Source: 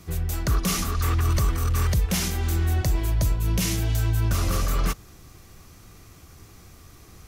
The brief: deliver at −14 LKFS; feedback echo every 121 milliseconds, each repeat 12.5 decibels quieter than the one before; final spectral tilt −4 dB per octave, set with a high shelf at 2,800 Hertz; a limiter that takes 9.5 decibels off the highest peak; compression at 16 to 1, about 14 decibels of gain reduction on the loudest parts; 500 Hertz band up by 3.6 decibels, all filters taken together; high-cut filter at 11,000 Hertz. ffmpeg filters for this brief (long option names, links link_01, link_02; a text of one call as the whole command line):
ffmpeg -i in.wav -af "lowpass=11000,equalizer=frequency=500:width_type=o:gain=4.5,highshelf=frequency=2800:gain=9,acompressor=threshold=-32dB:ratio=16,alimiter=level_in=5dB:limit=-24dB:level=0:latency=1,volume=-5dB,aecho=1:1:121|242|363:0.237|0.0569|0.0137,volume=24.5dB" out.wav